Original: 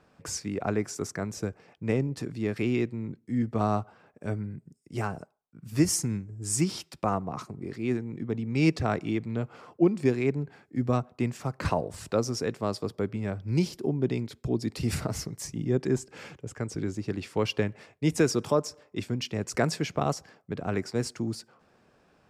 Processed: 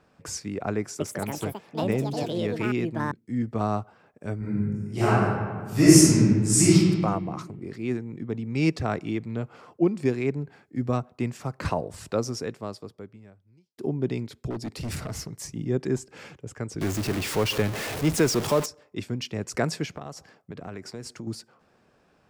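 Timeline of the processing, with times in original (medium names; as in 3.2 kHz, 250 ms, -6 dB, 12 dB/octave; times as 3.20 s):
0.78–3.77 s: ever faster or slower copies 222 ms, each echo +6 st, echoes 2
4.38–6.73 s: reverb throw, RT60 1.6 s, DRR -11.5 dB
12.28–13.78 s: fade out quadratic
14.50–15.48 s: hard clipper -28.5 dBFS
16.81–18.66 s: jump at every zero crossing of -26.5 dBFS
19.85–21.27 s: compression, threshold -33 dBFS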